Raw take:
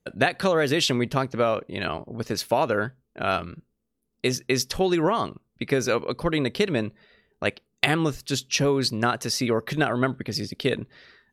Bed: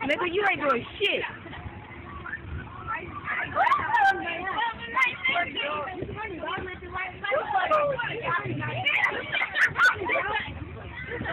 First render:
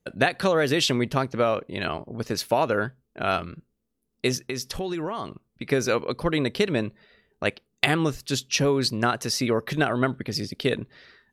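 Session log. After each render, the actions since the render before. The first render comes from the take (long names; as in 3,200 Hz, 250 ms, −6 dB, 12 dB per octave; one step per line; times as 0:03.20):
0:04.37–0:05.66: downward compressor 3 to 1, threshold −28 dBFS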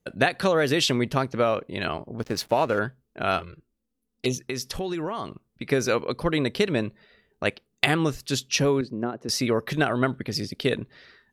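0:02.18–0:02.79: slack as between gear wheels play −35.5 dBFS
0:03.39–0:04.47: flanger swept by the level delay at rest 4.1 ms, full sweep at −21.5 dBFS
0:08.81–0:09.29: resonant band-pass 310 Hz, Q 1.1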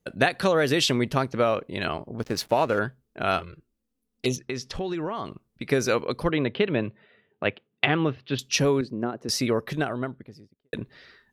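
0:04.36–0:05.26: high-frequency loss of the air 87 metres
0:06.29–0:08.39: elliptic band-pass filter 100–3,200 Hz
0:09.29–0:10.73: fade out and dull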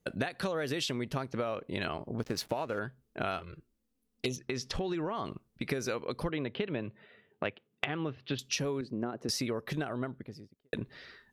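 downward compressor 10 to 1, threshold −30 dBFS, peak gain reduction 15 dB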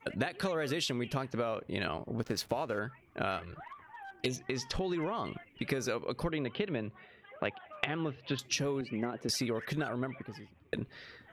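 mix in bed −27 dB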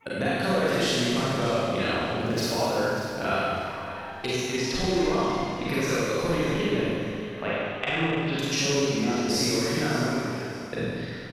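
repeating echo 592 ms, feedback 25%, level −13 dB
four-comb reverb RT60 2.1 s, combs from 33 ms, DRR −9 dB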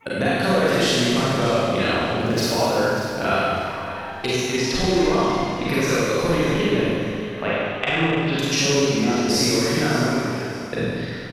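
level +5.5 dB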